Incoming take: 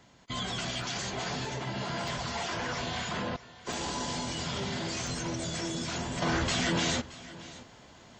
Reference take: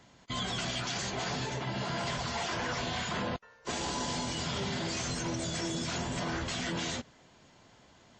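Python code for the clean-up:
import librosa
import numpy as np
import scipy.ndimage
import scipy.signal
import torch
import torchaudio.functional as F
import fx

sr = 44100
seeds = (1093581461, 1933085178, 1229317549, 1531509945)

y = fx.fix_interpolate(x, sr, at_s=(0.82, 1.45, 2.08, 3.73, 5.07), length_ms=2.4)
y = fx.fix_echo_inverse(y, sr, delay_ms=622, level_db=-18.0)
y = fx.gain(y, sr, db=fx.steps((0.0, 0.0), (6.22, -6.0)))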